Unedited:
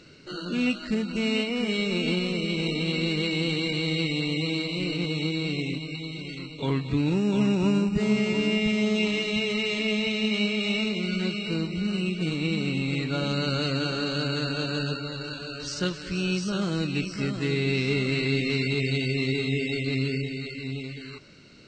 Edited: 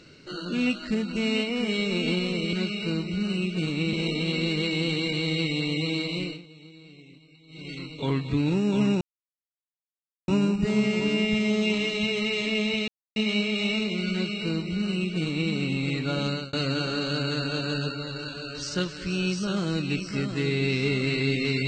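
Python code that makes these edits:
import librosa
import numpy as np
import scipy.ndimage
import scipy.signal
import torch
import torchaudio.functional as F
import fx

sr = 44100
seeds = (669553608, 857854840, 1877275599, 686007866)

y = fx.edit(x, sr, fx.fade_down_up(start_s=4.77, length_s=1.55, db=-20.5, fade_s=0.25),
    fx.insert_silence(at_s=7.61, length_s=1.27),
    fx.insert_silence(at_s=10.21, length_s=0.28),
    fx.duplicate(start_s=11.17, length_s=1.4, to_s=2.53),
    fx.fade_out_span(start_s=13.33, length_s=0.25), tone=tone)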